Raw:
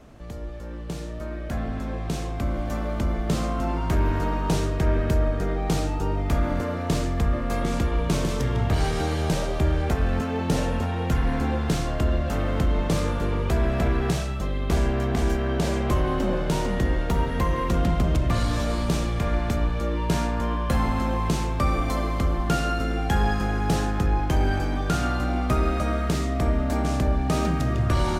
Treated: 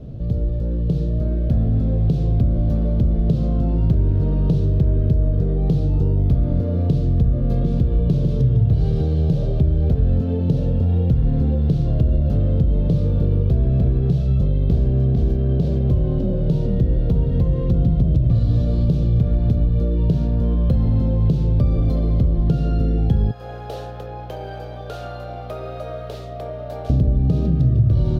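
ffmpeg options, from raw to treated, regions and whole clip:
-filter_complex "[0:a]asettb=1/sr,asplit=3[a][b][c];[a]atrim=end=23.314[d];[b]atrim=start=23.31:end=26.9,asetpts=PTS-STARTPTS,afade=t=in:d=0.004:c=qsin,afade=t=out:st=3.586:d=0.004:c=qsin,highpass=f=600:w=0.5412,highpass=f=600:w=1.3066,equalizer=f=4.7k:w=0.75:g=-5,aeval=exprs='val(0)+0.00282*(sin(2*PI*60*n/s)+sin(2*PI*2*60*n/s)/2+sin(2*PI*3*60*n/s)/3+sin(2*PI*4*60*n/s)/4+sin(2*PI*5*60*n/s)/5)':c=same[e];[c]atrim=start=26.896[f];[d][e]acrossfade=d=0.004:c1=hsin:c2=qsin[g];[g][f]acrossfade=d=0.004:c1=qsin:c2=hsin,equalizer=f=125:t=o:w=1:g=10,equalizer=f=500:t=o:w=1:g=11,equalizer=f=1k:t=o:w=1:g=-10,equalizer=f=2k:t=o:w=1:g=-11,equalizer=f=4k:t=o:w=1:g=7,equalizer=f=8k:t=o:w=1:g=-11,acompressor=threshold=-25dB:ratio=6,bass=f=250:g=13,treble=f=4k:g=-6"

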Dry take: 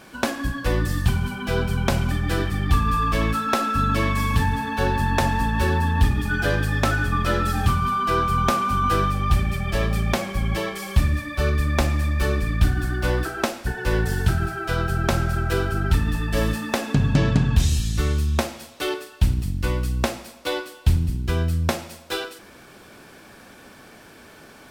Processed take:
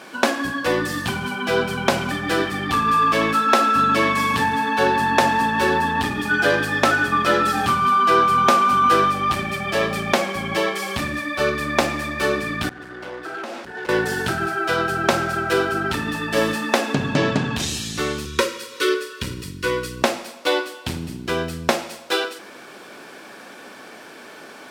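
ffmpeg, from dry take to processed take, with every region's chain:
-filter_complex "[0:a]asettb=1/sr,asplit=3[a][b][c];[a]atrim=end=12.694[d];[b]atrim=start=12.69:end=13.89,asetpts=PTS-STARTPTS,afade=t=in:d=0.004:c=qsin,afade=t=out:st=1.196:d=0.004:c=qsin,lowpass=f=3.8k:p=1,acompressor=threshold=-32dB:ratio=4:attack=3.2:release=140:knee=1:detection=peak,volume=32.5dB,asoftclip=hard,volume=-32.5dB[e];[c]atrim=start=13.886[f];[d][e]acrossfade=d=0.004:c1=hsin:c2=qsin[g];[g][f]acrossfade=d=0.004:c1=qsin:c2=hsin,asettb=1/sr,asplit=3[h][i][j];[h]atrim=end=18.254[k];[i]atrim=start=18.25:end=20.02,asetpts=PTS-STARTPTS,afade=t=in:d=0.004:c=qsin,afade=t=out:st=1.766:d=0.004:c=qsin,aecho=1:1:2.1:0.52,atrim=end_sample=78057,acompressor=mode=upward:threshold=-36dB:ratio=2.5:attack=3.2:release=140:knee=2.83:detection=peak,asuperstop=centerf=730:order=20:qfactor=1.9[l];[j]atrim=start=20.016[m];[k][l]acrossfade=d=0.004:c1=hsin:c2=qsin[n];[n][m]acrossfade=d=0.004:c1=qsin:c2=hsin,acontrast=52,highpass=280,highshelf=f=9.7k:g=-9,volume=1dB"

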